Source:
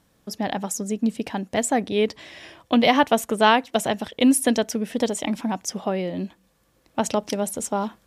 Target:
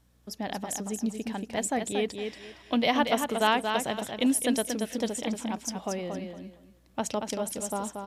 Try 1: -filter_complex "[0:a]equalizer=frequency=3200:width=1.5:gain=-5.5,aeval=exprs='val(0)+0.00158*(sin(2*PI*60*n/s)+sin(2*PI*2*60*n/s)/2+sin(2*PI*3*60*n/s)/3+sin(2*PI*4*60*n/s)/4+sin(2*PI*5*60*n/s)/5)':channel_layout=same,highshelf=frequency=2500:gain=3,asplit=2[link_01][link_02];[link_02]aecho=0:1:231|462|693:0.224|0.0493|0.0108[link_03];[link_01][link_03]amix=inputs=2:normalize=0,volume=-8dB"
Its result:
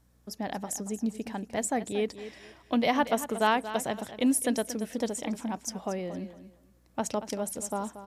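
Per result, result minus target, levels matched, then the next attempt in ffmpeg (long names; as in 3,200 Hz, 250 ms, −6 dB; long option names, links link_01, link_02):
echo-to-direct −7 dB; 4,000 Hz band −4.5 dB
-filter_complex "[0:a]equalizer=frequency=3200:width=1.5:gain=-5.5,aeval=exprs='val(0)+0.00158*(sin(2*PI*60*n/s)+sin(2*PI*2*60*n/s)/2+sin(2*PI*3*60*n/s)/3+sin(2*PI*4*60*n/s)/4+sin(2*PI*5*60*n/s)/5)':channel_layout=same,highshelf=frequency=2500:gain=3,asplit=2[link_01][link_02];[link_02]aecho=0:1:231|462|693:0.501|0.11|0.0243[link_03];[link_01][link_03]amix=inputs=2:normalize=0,volume=-8dB"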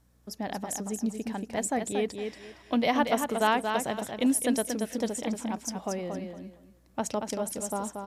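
4,000 Hz band −4.0 dB
-filter_complex "[0:a]aeval=exprs='val(0)+0.00158*(sin(2*PI*60*n/s)+sin(2*PI*2*60*n/s)/2+sin(2*PI*3*60*n/s)/3+sin(2*PI*4*60*n/s)/4+sin(2*PI*5*60*n/s)/5)':channel_layout=same,highshelf=frequency=2500:gain=3,asplit=2[link_01][link_02];[link_02]aecho=0:1:231|462|693:0.501|0.11|0.0243[link_03];[link_01][link_03]amix=inputs=2:normalize=0,volume=-8dB"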